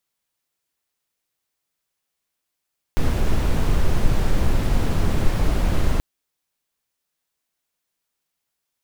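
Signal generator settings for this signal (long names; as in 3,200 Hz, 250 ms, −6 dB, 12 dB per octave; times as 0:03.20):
noise brown, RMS −16.5 dBFS 3.03 s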